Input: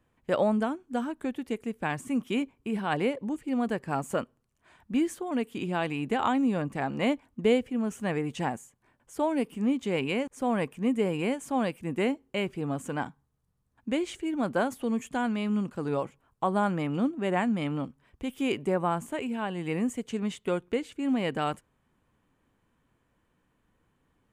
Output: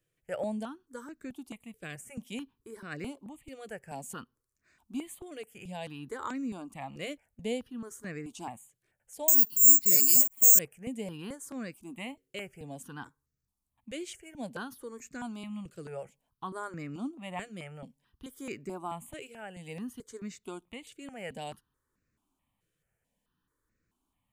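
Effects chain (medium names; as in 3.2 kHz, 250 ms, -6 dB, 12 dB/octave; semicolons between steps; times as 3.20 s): 9.28–10.59 s: careless resampling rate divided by 6×, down filtered, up zero stuff; treble shelf 3.6 kHz +11 dB; stepped phaser 4.6 Hz 240–3200 Hz; trim -8.5 dB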